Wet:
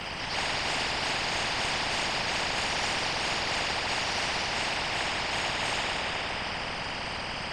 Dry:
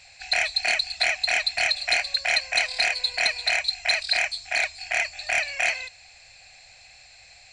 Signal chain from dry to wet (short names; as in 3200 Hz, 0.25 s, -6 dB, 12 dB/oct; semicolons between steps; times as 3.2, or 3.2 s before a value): pitch shift by moving bins +2.5 st; LPF 1100 Hz 12 dB/oct; in parallel at -1 dB: upward compressor, threshold -42 dBFS; on the sum: plate-style reverb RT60 3.6 s, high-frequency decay 0.65×, DRR -8.5 dB; whisperiser; spectral compressor 4:1; gain -5.5 dB